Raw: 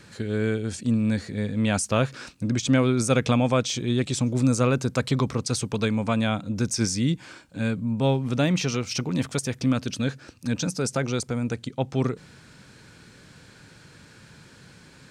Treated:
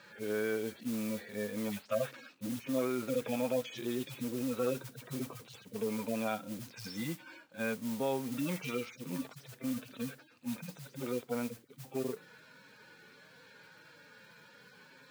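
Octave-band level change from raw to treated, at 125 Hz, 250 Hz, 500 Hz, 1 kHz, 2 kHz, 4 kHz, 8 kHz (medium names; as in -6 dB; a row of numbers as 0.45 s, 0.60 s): -21.0 dB, -12.5 dB, -8.5 dB, -12.0 dB, -11.0 dB, -15.0 dB, -16.5 dB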